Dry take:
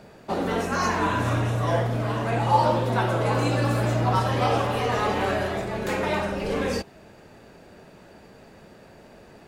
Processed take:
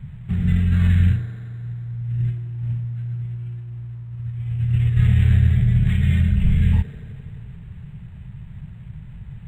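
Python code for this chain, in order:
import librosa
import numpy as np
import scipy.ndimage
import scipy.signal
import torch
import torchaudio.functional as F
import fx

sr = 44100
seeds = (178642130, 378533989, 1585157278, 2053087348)

p1 = scipy.signal.sosfilt(scipy.signal.ellip(3, 1.0, 40, [140.0, 2000.0], 'bandstop', fs=sr, output='sos'), x)
p2 = fx.low_shelf_res(p1, sr, hz=770.0, db=12.0, q=1.5)
p3 = fx.over_compress(p2, sr, threshold_db=-23.0, ratio=-0.5)
p4 = fx.dmg_noise_colour(p3, sr, seeds[0], colour='blue', level_db=-48.0)
p5 = fx.spacing_loss(p4, sr, db_at_10k=30)
p6 = p5 + fx.echo_wet_bandpass(p5, sr, ms=87, feedback_pct=79, hz=610.0, wet_db=-4.5, dry=0)
p7 = np.interp(np.arange(len(p6)), np.arange(len(p6))[::8], p6[::8])
y = F.gain(torch.from_numpy(p7), 4.5).numpy()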